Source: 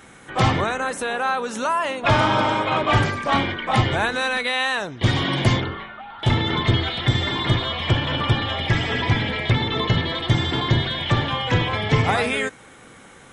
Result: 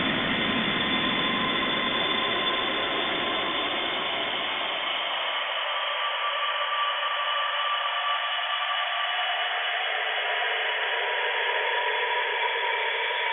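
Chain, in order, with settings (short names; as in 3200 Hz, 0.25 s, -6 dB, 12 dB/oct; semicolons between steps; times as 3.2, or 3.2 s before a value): sine-wave speech; Paulstretch 6.2×, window 1.00 s, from 7.07; gain -3 dB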